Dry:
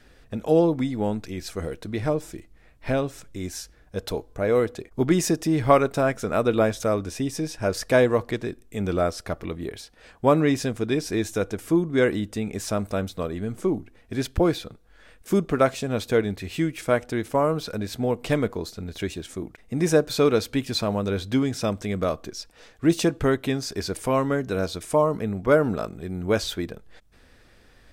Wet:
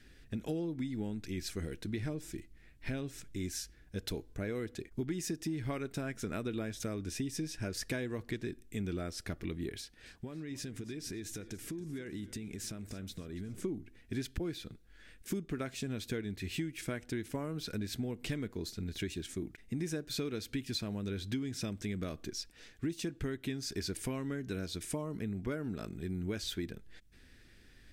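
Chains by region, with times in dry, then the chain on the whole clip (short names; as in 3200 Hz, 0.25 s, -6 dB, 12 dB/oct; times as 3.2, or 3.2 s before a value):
9.75–13.64 compressor 12:1, threshold -33 dBFS + warbling echo 0.279 s, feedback 48%, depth 51 cents, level -17 dB
whole clip: band shelf 780 Hz -10.5 dB; compressor 10:1, threshold -29 dBFS; gain -4 dB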